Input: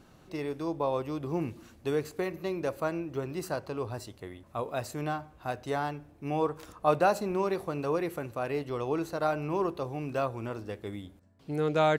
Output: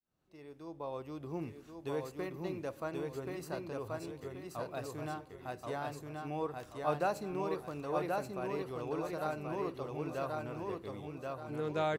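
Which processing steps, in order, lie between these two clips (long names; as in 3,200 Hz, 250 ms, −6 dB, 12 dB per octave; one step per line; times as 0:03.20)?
fade in at the beginning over 1.27 s
repeating echo 1,080 ms, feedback 37%, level −3 dB
level −8.5 dB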